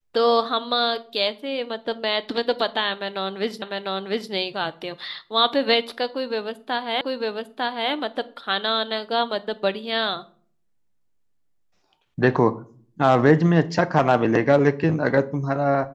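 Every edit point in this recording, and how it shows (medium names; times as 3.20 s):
3.62 s: repeat of the last 0.7 s
7.01 s: repeat of the last 0.9 s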